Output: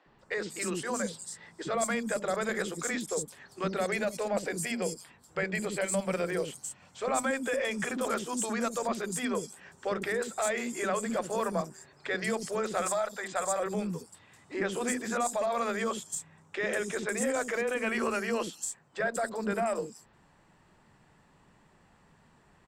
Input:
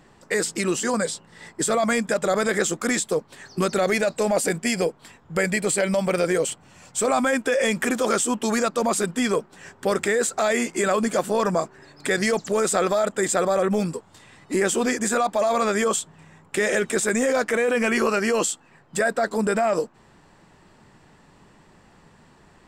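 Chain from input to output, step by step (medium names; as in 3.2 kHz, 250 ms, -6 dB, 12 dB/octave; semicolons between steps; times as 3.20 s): 12.81–13.60 s: resonant low shelf 540 Hz -7.5 dB, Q 1.5; three bands offset in time mids, lows, highs 60/190 ms, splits 340/4900 Hz; Chebyshev shaper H 2 -24 dB, 6 -44 dB, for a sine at -8 dBFS; trim -8 dB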